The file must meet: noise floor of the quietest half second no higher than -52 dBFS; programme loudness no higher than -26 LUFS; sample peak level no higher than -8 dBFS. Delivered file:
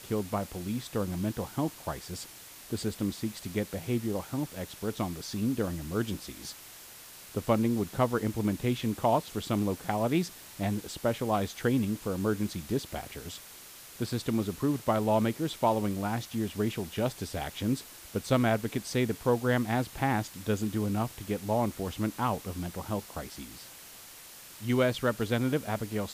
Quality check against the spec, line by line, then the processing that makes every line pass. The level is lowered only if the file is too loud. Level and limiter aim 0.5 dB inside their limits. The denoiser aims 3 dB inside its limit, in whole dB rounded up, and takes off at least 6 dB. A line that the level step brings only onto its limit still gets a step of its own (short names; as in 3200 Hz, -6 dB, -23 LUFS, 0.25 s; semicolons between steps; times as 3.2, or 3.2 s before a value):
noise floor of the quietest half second -49 dBFS: fail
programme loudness -31.5 LUFS: OK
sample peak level -13.0 dBFS: OK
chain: denoiser 6 dB, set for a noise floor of -49 dBFS